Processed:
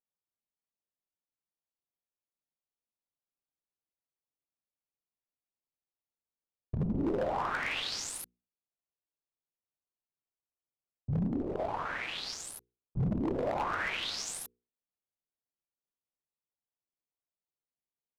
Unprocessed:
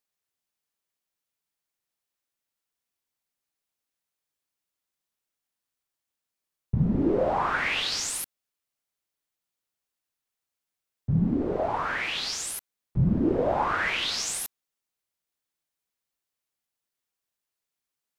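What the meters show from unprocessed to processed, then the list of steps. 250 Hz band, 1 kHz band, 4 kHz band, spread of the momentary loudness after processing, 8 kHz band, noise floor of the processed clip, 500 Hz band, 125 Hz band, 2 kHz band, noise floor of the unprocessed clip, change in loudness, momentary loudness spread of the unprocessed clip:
-7.5 dB, -7.0 dB, -7.5 dB, 11 LU, -9.0 dB, under -85 dBFS, -7.5 dB, -7.5 dB, -7.5 dB, under -85 dBFS, -7.5 dB, 9 LU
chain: Wiener smoothing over 25 samples; notches 60/120/180/240/300/360/420/480 Hz; wavefolder -18.5 dBFS; gain -6 dB

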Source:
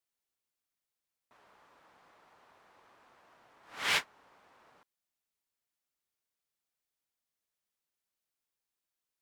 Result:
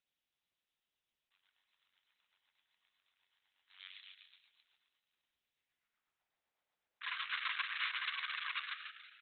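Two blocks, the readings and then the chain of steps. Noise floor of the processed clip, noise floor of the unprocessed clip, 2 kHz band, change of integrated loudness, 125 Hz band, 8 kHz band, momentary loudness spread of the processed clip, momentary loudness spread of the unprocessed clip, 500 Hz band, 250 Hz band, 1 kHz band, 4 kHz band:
under -85 dBFS, under -85 dBFS, -0.5 dB, -8.0 dB, under -30 dB, under -30 dB, 17 LU, 4 LU, under -25 dB, under -25 dB, -1.5 dB, -2.0 dB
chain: de-hum 289.3 Hz, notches 36; compressor 12:1, threshold -42 dBFS, peak gain reduction 17.5 dB; high-pass sweep 3700 Hz -> 690 Hz, 5.37–6.25; robotiser 94.1 Hz; painted sound noise, 7.01–8.59, 990–4400 Hz -40 dBFS; air absorption 390 m; frequency-shifting echo 0.158 s, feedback 52%, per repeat +66 Hz, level -3 dB; rotary speaker horn 8 Hz; gain +7 dB; Opus 6 kbps 48000 Hz

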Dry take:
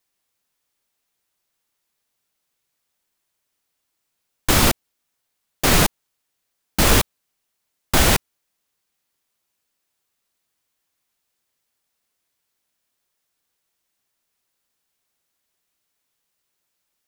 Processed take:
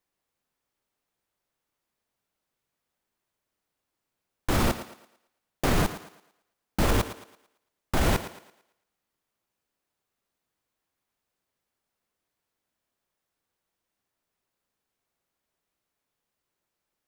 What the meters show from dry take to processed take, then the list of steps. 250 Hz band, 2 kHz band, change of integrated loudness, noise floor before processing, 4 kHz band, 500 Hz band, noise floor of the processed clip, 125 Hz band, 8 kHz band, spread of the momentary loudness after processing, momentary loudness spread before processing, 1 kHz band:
-5.5 dB, -10.0 dB, -10.0 dB, -77 dBFS, -13.5 dB, -6.0 dB, -85 dBFS, -5.5 dB, -15.0 dB, 17 LU, 13 LU, -7.0 dB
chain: high shelf 2000 Hz -11 dB; limiter -14 dBFS, peak gain reduction 9 dB; thinning echo 0.112 s, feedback 38%, high-pass 190 Hz, level -12 dB

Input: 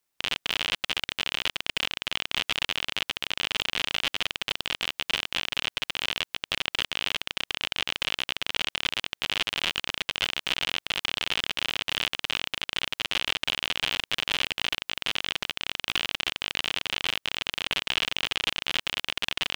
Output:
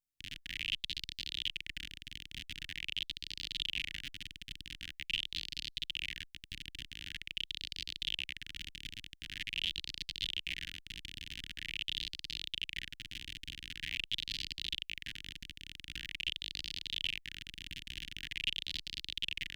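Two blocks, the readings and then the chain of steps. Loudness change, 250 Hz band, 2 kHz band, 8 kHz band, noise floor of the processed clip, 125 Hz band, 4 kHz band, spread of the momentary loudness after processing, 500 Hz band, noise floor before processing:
-11.5 dB, -12.5 dB, -13.0 dB, -13.5 dB, -65 dBFS, -6.0 dB, -11.0 dB, 10 LU, under -30 dB, -80 dBFS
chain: elliptic band-stop 310–1800 Hz, stop band 40 dB; passive tone stack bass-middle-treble 10-0-1; LFO bell 0.45 Hz 880–4600 Hz +14 dB; gain +6 dB

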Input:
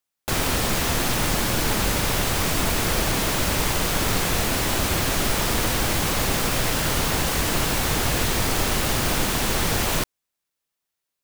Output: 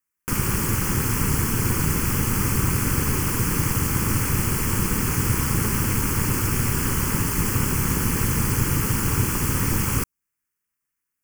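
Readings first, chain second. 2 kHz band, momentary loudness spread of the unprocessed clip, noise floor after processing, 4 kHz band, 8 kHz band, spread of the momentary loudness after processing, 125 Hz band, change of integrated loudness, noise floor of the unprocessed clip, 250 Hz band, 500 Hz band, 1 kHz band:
-4.0 dB, 0 LU, -82 dBFS, -9.5 dB, -0.5 dB, 1 LU, +5.0 dB, 0.0 dB, -83 dBFS, +2.0 dB, -5.0 dB, -4.0 dB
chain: dynamic EQ 1800 Hz, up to -7 dB, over -44 dBFS, Q 1.6; ring modulator 110 Hz; fixed phaser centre 1600 Hz, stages 4; gain +5.5 dB

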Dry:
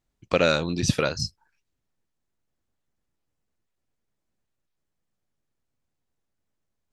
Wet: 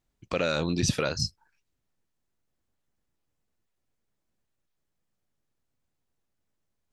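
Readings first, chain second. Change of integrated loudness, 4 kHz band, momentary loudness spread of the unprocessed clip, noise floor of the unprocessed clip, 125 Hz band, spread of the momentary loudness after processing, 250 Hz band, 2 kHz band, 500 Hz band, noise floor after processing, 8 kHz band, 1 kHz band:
-4.0 dB, -2.5 dB, 9 LU, -80 dBFS, -2.5 dB, 6 LU, -3.0 dB, -5.0 dB, -5.5 dB, -80 dBFS, -0.5 dB, -5.0 dB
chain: limiter -13 dBFS, peak gain reduction 8 dB

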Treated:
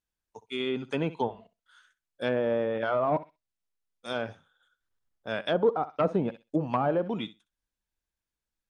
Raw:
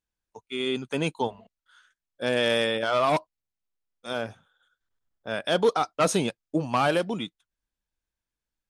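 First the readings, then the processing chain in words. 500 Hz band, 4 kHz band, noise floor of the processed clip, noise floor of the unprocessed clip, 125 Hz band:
-2.0 dB, -9.5 dB, under -85 dBFS, under -85 dBFS, -1.5 dB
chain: flutter echo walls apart 10.9 m, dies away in 0.22 s; treble ducked by the level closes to 910 Hz, closed at -20 dBFS; gain -1.5 dB

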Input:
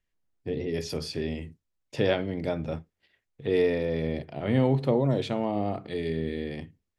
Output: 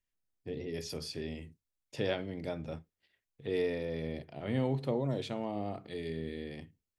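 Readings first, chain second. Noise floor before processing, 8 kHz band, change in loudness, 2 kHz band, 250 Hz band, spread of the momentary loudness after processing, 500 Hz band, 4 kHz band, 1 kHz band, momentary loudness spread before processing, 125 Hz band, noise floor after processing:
-82 dBFS, n/a, -8.0 dB, -7.5 dB, -8.5 dB, 12 LU, -8.5 dB, -5.5 dB, -8.5 dB, 13 LU, -8.5 dB, under -85 dBFS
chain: high shelf 4300 Hz +6.5 dB; gain -8.5 dB

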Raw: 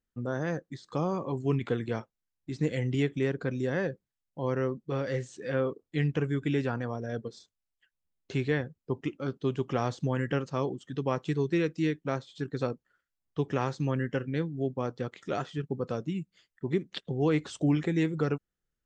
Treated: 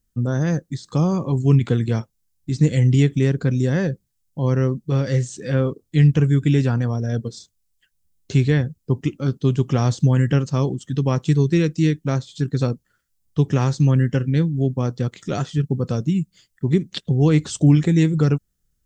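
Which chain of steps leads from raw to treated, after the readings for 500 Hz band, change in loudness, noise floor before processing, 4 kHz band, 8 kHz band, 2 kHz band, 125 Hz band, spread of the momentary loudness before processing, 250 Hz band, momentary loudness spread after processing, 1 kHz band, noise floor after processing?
+5.5 dB, +11.5 dB, under -85 dBFS, +9.0 dB, +15.5 dB, +5.0 dB, +15.5 dB, 8 LU, +10.5 dB, 9 LU, +4.0 dB, -71 dBFS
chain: tone controls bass +13 dB, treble +13 dB; gain +4 dB

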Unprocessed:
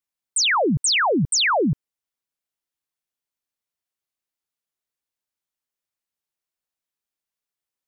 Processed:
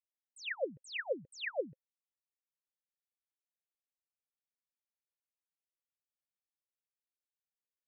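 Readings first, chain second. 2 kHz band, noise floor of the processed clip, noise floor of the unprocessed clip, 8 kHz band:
-18.5 dB, under -85 dBFS, under -85 dBFS, -35.5 dB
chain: vowel filter e; gain -8 dB

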